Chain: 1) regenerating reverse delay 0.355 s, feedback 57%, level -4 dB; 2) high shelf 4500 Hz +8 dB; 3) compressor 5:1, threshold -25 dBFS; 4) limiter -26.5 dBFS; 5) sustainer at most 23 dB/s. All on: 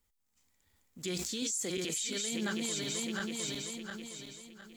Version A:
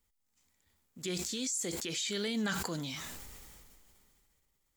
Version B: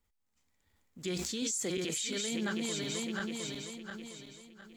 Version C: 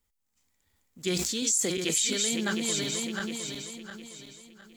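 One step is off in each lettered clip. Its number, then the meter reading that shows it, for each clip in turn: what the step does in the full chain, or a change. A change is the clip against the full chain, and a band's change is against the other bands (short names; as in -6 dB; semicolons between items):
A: 1, crest factor change +2.5 dB; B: 2, 8 kHz band -2.5 dB; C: 4, mean gain reduction 2.5 dB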